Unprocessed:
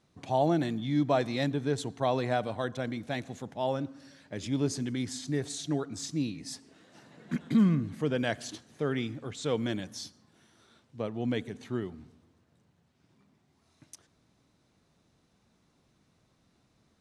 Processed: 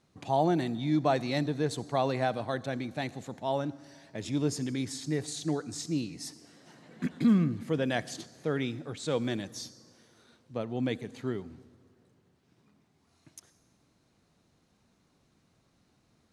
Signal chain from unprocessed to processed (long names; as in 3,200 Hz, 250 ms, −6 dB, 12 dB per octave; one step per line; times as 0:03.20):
on a send at −23.5 dB: high shelf with overshoot 3,500 Hz +8.5 dB, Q 3 + convolution reverb RT60 3.2 s, pre-delay 53 ms
on the sum: wrong playback speed 24 fps film run at 25 fps